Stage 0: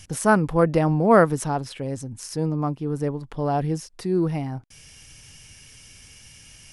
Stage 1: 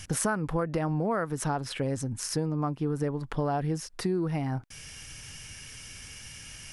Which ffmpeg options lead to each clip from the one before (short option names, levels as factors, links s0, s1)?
-filter_complex "[0:a]equalizer=f=1500:w=1.5:g=5,asplit=2[s0][s1];[s1]alimiter=limit=0.2:level=0:latency=1:release=114,volume=1.19[s2];[s0][s2]amix=inputs=2:normalize=0,acompressor=threshold=0.1:ratio=16,volume=0.596"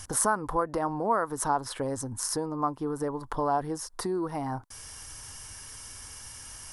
-af "equalizer=f=160:t=o:w=0.67:g=-11,equalizer=f=1000:t=o:w=0.67:g=10,equalizer=f=2500:t=o:w=0.67:g=-11,equalizer=f=10000:t=o:w=0.67:g=6"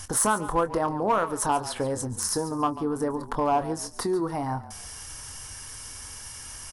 -filter_complex "[0:a]asplit=2[s0][s1];[s1]aeval=exprs='0.0841*(abs(mod(val(0)/0.0841+3,4)-2)-1)':c=same,volume=0.447[s2];[s0][s2]amix=inputs=2:normalize=0,asplit=2[s3][s4];[s4]adelay=24,volume=0.282[s5];[s3][s5]amix=inputs=2:normalize=0,asplit=4[s6][s7][s8][s9];[s7]adelay=141,afreqshift=-35,volume=0.178[s10];[s8]adelay=282,afreqshift=-70,volume=0.0531[s11];[s9]adelay=423,afreqshift=-105,volume=0.016[s12];[s6][s10][s11][s12]amix=inputs=4:normalize=0"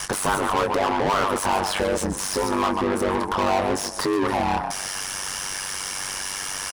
-filter_complex "[0:a]asplit=2[s0][s1];[s1]highpass=f=720:p=1,volume=35.5,asoftclip=type=tanh:threshold=0.237[s2];[s0][s2]amix=inputs=2:normalize=0,lowpass=f=3500:p=1,volume=0.501,aeval=exprs='val(0)*sin(2*PI*48*n/s)':c=same,aecho=1:1:126|252|378|504:0.0668|0.0381|0.0217|0.0124"